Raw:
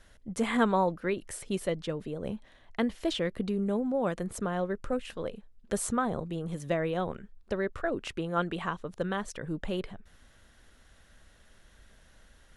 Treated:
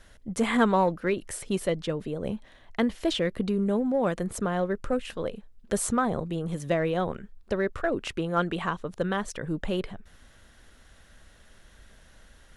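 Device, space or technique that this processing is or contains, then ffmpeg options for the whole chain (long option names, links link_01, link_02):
parallel distortion: -filter_complex "[0:a]asplit=2[link_01][link_02];[link_02]asoftclip=type=hard:threshold=-25.5dB,volume=-11.5dB[link_03];[link_01][link_03]amix=inputs=2:normalize=0,volume=2dB"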